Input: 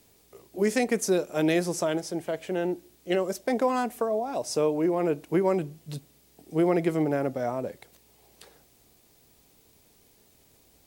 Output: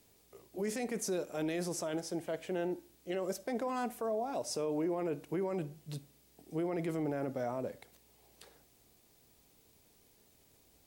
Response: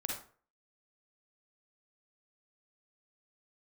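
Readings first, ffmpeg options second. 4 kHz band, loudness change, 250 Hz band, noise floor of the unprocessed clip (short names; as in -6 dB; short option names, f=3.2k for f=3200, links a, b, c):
-8.5 dB, -10.0 dB, -9.5 dB, -61 dBFS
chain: -filter_complex "[0:a]alimiter=limit=-22dB:level=0:latency=1:release=13,asplit=2[a][b];[1:a]atrim=start_sample=2205[c];[b][c]afir=irnorm=-1:irlink=0,volume=-17.5dB[d];[a][d]amix=inputs=2:normalize=0,volume=-6.5dB"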